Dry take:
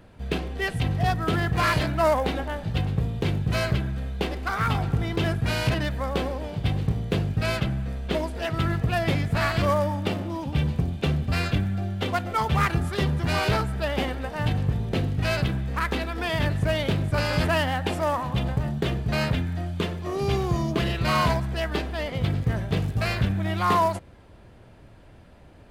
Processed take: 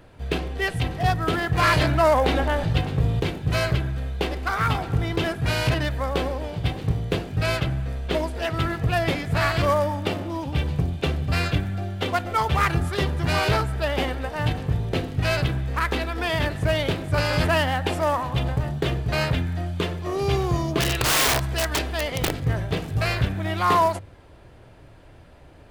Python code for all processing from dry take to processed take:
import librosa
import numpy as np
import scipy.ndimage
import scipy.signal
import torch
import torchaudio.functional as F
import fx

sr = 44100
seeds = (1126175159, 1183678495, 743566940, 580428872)

y = fx.chain(x, sr, fx.high_shelf(hz=12000.0, db=-4.0),
    fx.env_flatten(amount_pct=50), at=(1.62, 3.2))
y = fx.chain(y, sr, fx.high_shelf(hz=2300.0, db=5.5),
    fx.overflow_wrap(gain_db=17.0), at=(20.8, 22.4))
y = fx.peak_eq(y, sr, hz=210.0, db=-12.0, octaves=0.24)
y = fx.hum_notches(y, sr, base_hz=50, count=3)
y = y * librosa.db_to_amplitude(2.5)